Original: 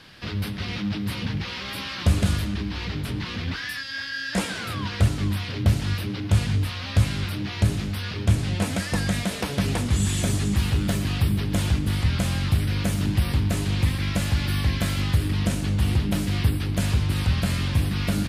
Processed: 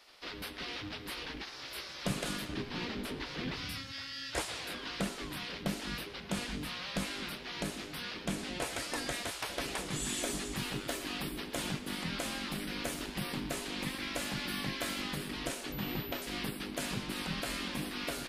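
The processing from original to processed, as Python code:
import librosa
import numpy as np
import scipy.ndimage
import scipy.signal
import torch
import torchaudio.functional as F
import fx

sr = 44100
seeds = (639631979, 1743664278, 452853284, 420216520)

y = fx.spec_gate(x, sr, threshold_db=-10, keep='weak')
y = fx.low_shelf(y, sr, hz=460.0, db=10.0, at=(2.49, 3.92))
y = fx.pwm(y, sr, carrier_hz=12000.0, at=(15.72, 16.22))
y = y * librosa.db_to_amplitude(-6.0)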